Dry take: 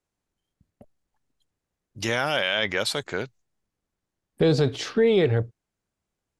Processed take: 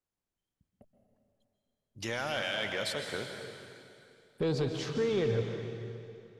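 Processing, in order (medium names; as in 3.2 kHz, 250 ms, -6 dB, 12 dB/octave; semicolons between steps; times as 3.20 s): saturation -13 dBFS, distortion -20 dB; plate-style reverb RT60 2.6 s, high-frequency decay 0.95×, pre-delay 115 ms, DRR 4 dB; trim -9 dB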